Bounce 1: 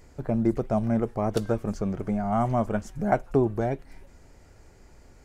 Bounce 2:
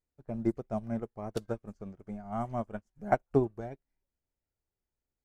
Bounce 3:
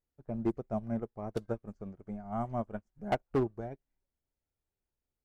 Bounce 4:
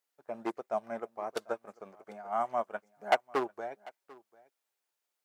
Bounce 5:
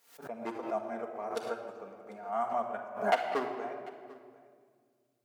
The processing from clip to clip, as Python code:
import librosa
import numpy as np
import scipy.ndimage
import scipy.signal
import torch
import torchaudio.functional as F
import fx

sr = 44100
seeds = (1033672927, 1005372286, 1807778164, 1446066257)

y1 = fx.upward_expand(x, sr, threshold_db=-42.0, expansion=2.5)
y1 = F.gain(torch.from_numpy(y1), -2.0).numpy()
y2 = fx.high_shelf(y1, sr, hz=2500.0, db=-8.0)
y2 = np.clip(10.0 ** (23.0 / 20.0) * y2, -1.0, 1.0) / 10.0 ** (23.0 / 20.0)
y3 = scipy.signal.sosfilt(scipy.signal.butter(2, 750.0, 'highpass', fs=sr, output='sos'), y2)
y3 = y3 + 10.0 ** (-22.5 / 20.0) * np.pad(y3, (int(744 * sr / 1000.0), 0))[:len(y3)]
y3 = F.gain(torch.from_numpy(y3), 9.0).numpy()
y4 = fx.room_shoebox(y3, sr, seeds[0], volume_m3=3100.0, walls='mixed', distance_m=1.7)
y4 = fx.pre_swell(y4, sr, db_per_s=110.0)
y4 = F.gain(torch.from_numpy(y4), -3.0).numpy()